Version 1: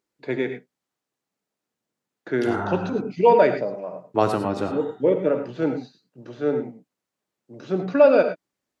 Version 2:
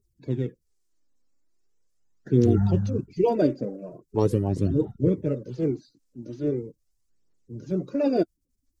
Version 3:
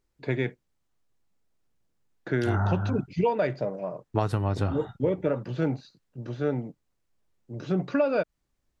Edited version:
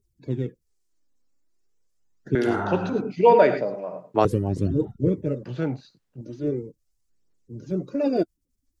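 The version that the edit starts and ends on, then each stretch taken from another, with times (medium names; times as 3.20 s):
2
2.35–4.25 s: from 1
5.43–6.21 s: from 3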